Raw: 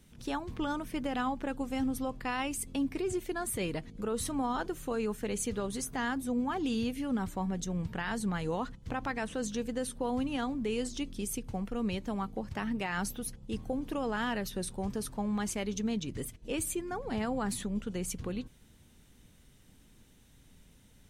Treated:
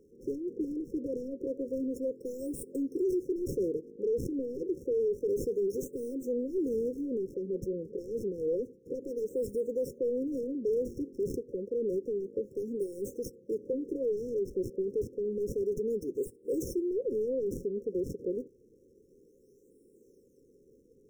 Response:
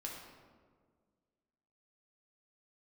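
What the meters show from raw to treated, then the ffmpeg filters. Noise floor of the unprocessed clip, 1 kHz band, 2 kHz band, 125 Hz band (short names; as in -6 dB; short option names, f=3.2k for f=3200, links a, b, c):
-60 dBFS, under -40 dB, under -40 dB, -6.5 dB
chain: -filter_complex "[0:a]highpass=f=400:t=q:w=4.9,acrossover=split=3400[a][b];[a]asoftclip=type=tanh:threshold=-28dB[c];[b]acrusher=samples=34:mix=1:aa=0.000001:lfo=1:lforange=54.4:lforate=0.29[d];[c][d]amix=inputs=2:normalize=0,afftfilt=real='re*(1-between(b*sr/4096,550,5300))':imag='im*(1-between(b*sr/4096,550,5300))':win_size=4096:overlap=0.75,volume=2dB"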